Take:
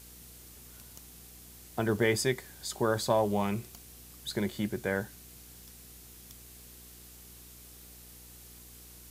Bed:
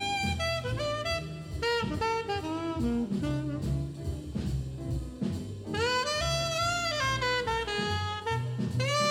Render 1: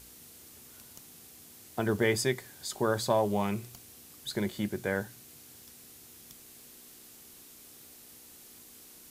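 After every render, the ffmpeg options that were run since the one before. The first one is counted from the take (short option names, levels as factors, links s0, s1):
-af "bandreject=f=60:t=h:w=4,bandreject=f=120:t=h:w=4,bandreject=f=180:t=h:w=4"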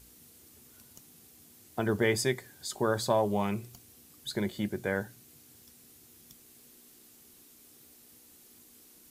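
-af "afftdn=nr=6:nf=-53"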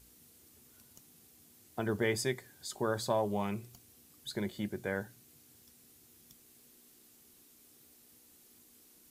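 -af "volume=0.596"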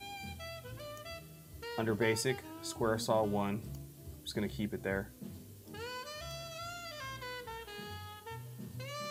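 -filter_complex "[1:a]volume=0.178[s0];[0:a][s0]amix=inputs=2:normalize=0"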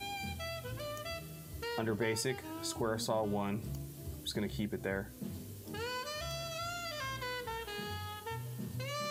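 -filter_complex "[0:a]asplit=2[s0][s1];[s1]alimiter=level_in=1.68:limit=0.0631:level=0:latency=1:release=108,volume=0.596,volume=0.891[s2];[s0][s2]amix=inputs=2:normalize=0,acompressor=threshold=0.0112:ratio=1.5"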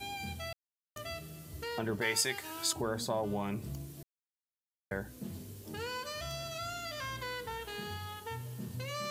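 -filter_complex "[0:a]asettb=1/sr,asplit=3[s0][s1][s2];[s0]atrim=end=2.014[s3];[s1]atrim=start=2.01:end=2.73,asetpts=PTS-STARTPTS,afade=t=in:d=0.004:c=qsin,afade=t=out:st=0.716:d=0.004:c=qsin,tiltshelf=f=640:g=-8[s4];[s2]atrim=start=2.726[s5];[s3][s4]acrossfade=d=0.004:c1=hsin:c2=qsin[s6];[s6][s5]acrossfade=d=0.004:c1=qsin:c2=hsin,asplit=5[s7][s8][s9][s10][s11];[s7]atrim=end=0.53,asetpts=PTS-STARTPTS,afade=t=out:st=0.526:d=0.004:c=hsin[s12];[s8]atrim=start=0.53:end=0.96,asetpts=PTS-STARTPTS,volume=0[s13];[s9]atrim=start=0.96:end=4.03,asetpts=PTS-STARTPTS,afade=t=in:d=0.004:c=hsin,afade=t=out:st=3.066:d=0.004:c=hsin[s14];[s10]atrim=start=4.03:end=4.91,asetpts=PTS-STARTPTS,volume=0[s15];[s11]atrim=start=4.91,asetpts=PTS-STARTPTS,afade=t=in:d=0.004:c=hsin[s16];[s12][s13][s14][s15][s16]concat=n=5:v=0:a=1"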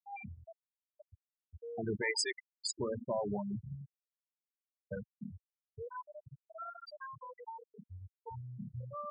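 -af "afftfilt=real='re*gte(hypot(re,im),0.0708)':imag='im*gte(hypot(re,im),0.0708)':win_size=1024:overlap=0.75,highpass=67"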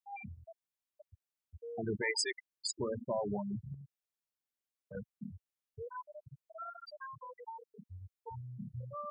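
-filter_complex "[0:a]asettb=1/sr,asplit=3[s0][s1][s2];[s0]atrim=end=3.744[s3];[s1]atrim=start=3.74:end=4.95,asetpts=PTS-STARTPTS,afade=t=in:d=0.004:c=qsin,afade=t=out:st=1.206:d=0.004:c=qsin,acompressor=threshold=0.00355:ratio=2.5:attack=3.2:release=140:knee=1:detection=peak[s4];[s2]atrim=start=4.946[s5];[s3][s4]acrossfade=d=0.004:c1=hsin:c2=qsin[s6];[s6][s5]acrossfade=d=0.004:c1=qsin:c2=hsin"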